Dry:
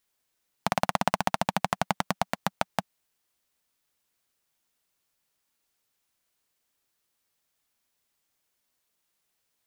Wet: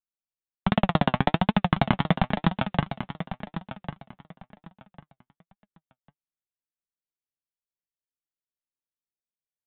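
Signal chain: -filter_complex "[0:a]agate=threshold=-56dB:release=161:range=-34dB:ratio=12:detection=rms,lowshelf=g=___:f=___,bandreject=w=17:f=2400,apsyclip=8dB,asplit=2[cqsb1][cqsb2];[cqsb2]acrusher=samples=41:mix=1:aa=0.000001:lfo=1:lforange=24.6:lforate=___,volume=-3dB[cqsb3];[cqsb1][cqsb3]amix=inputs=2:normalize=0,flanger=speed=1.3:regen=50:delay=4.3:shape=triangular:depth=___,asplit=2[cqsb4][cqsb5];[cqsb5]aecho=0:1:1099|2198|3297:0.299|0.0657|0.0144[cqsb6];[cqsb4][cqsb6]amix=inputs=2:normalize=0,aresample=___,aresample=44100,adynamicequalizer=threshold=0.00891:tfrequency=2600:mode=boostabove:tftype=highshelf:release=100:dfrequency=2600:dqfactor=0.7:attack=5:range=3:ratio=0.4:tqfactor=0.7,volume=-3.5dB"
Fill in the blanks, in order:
10.5, 200, 3.7, 3.9, 8000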